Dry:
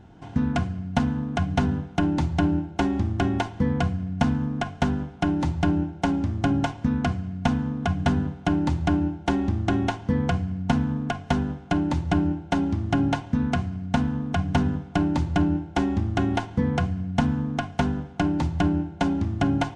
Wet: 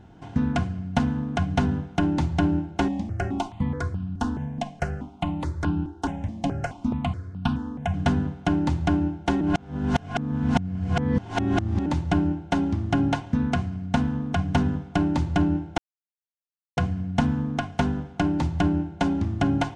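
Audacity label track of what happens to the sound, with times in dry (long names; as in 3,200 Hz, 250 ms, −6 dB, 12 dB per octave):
2.880000	7.940000	step-sequenced phaser 4.7 Hz 370–2,000 Hz
9.410000	11.860000	reverse
15.780000	16.770000	silence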